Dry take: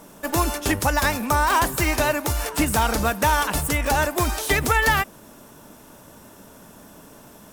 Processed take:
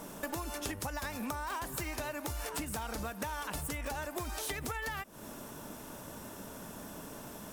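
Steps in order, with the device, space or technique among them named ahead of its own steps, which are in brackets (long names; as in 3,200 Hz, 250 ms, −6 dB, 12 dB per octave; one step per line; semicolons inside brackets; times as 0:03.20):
serial compression, peaks first (downward compressor, threshold −28 dBFS, peak gain reduction 13 dB; downward compressor 3 to 1, threshold −37 dBFS, peak gain reduction 9 dB)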